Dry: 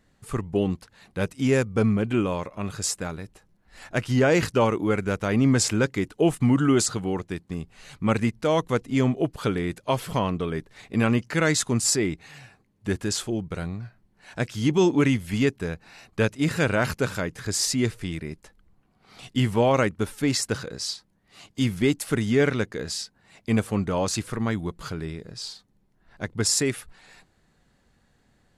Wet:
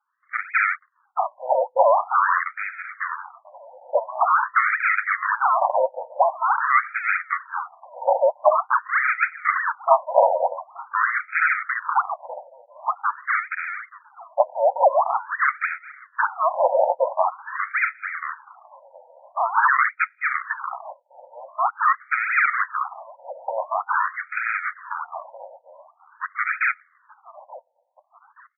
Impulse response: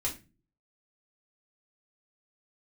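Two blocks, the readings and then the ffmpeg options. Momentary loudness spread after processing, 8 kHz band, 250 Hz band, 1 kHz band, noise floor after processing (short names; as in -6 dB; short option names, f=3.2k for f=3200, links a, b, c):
15 LU, under -40 dB, under -40 dB, +13.0 dB, -64 dBFS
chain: -af "afwtdn=0.0316,adynamicequalizer=threshold=0.00794:dfrequency=2900:dqfactor=0.87:tfrequency=2900:tqfactor=0.87:attack=5:release=100:ratio=0.375:range=2:mode=boostabove:tftype=bell,aresample=11025,asoftclip=type=tanh:threshold=-17dB,aresample=44100,flanger=delay=5.3:depth=7.2:regen=-53:speed=0.15:shape=sinusoidal,acrusher=samples=38:mix=1:aa=0.000001:lfo=1:lforange=38:lforate=3.3,aecho=1:1:876|1752|2628:0.0794|0.0318|0.0127,alimiter=level_in=22dB:limit=-1dB:release=50:level=0:latency=1,afftfilt=real='re*between(b*sr/1024,670*pow(1800/670,0.5+0.5*sin(2*PI*0.46*pts/sr))/1.41,670*pow(1800/670,0.5+0.5*sin(2*PI*0.46*pts/sr))*1.41)':imag='im*between(b*sr/1024,670*pow(1800/670,0.5+0.5*sin(2*PI*0.46*pts/sr))/1.41,670*pow(1800/670,0.5+0.5*sin(2*PI*0.46*pts/sr))*1.41)':win_size=1024:overlap=0.75"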